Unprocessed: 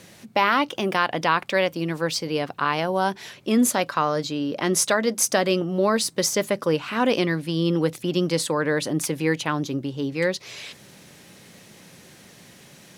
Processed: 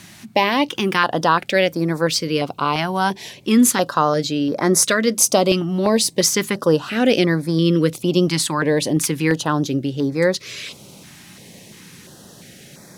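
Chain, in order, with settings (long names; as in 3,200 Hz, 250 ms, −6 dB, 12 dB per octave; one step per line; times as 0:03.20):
notch on a step sequencer 2.9 Hz 490–2,900 Hz
level +6.5 dB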